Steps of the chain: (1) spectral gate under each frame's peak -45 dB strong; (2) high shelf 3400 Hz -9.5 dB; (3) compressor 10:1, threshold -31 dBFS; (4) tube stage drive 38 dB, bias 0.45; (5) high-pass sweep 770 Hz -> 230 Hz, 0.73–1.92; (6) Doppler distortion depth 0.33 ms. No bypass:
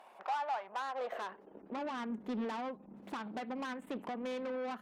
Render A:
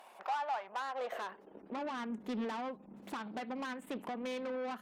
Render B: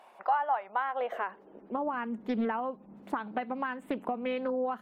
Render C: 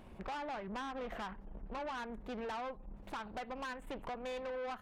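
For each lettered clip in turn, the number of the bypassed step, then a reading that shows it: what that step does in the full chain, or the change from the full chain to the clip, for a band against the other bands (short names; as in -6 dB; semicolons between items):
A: 2, 8 kHz band +2.5 dB; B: 4, crest factor change +2.5 dB; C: 5, 250 Hz band -5.5 dB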